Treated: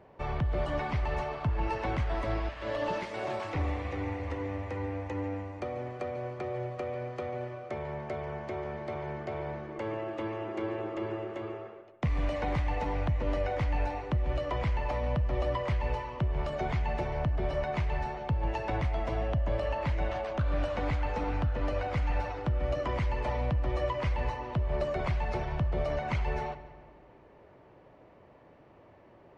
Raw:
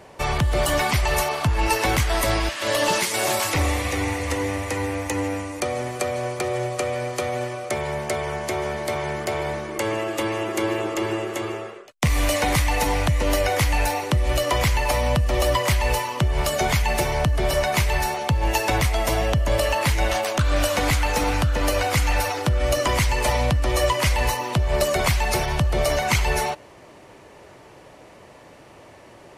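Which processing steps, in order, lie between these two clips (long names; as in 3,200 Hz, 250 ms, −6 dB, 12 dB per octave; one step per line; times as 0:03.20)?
head-to-tape spacing loss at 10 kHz 36 dB
on a send: feedback echo with a low-pass in the loop 144 ms, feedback 58%, low-pass 4,800 Hz, level −15 dB
on the sum: level −8 dB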